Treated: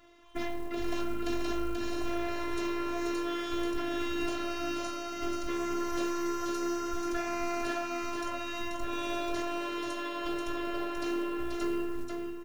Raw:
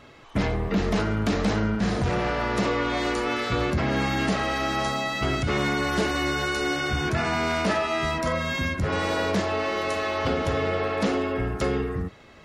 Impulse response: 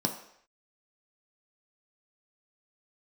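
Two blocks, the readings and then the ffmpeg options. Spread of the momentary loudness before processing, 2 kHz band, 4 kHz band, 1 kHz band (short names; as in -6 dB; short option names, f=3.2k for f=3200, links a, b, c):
2 LU, -12.5 dB, -10.0 dB, -9.0 dB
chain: -filter_complex "[0:a]afftfilt=real='hypot(re,im)*cos(PI*b)':imag='0':win_size=512:overlap=0.75,asplit=2[a][b];[b]adelay=20,volume=-10dB[c];[a][c]amix=inputs=2:normalize=0,aecho=1:1:484:0.596,acrusher=bits=7:mode=log:mix=0:aa=0.000001,volume=-6dB"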